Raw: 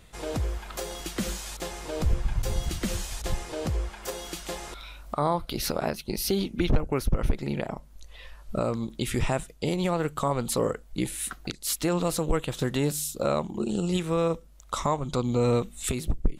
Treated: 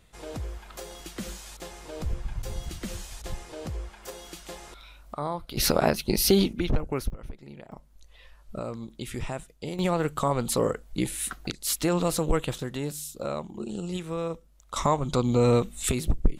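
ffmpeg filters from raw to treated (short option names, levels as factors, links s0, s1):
-af "asetnsamples=n=441:p=0,asendcmd='5.57 volume volume 6dB;6.53 volume volume -2.5dB;7.1 volume volume -15dB;7.72 volume volume -7dB;9.79 volume volume 1dB;12.58 volume volume -6dB;14.76 volume volume 2.5dB',volume=0.501"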